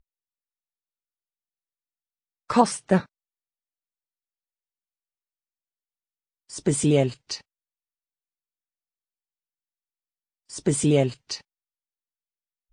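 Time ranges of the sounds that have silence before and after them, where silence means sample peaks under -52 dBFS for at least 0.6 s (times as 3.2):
2.49–3.06
6.49–7.41
10.49–11.41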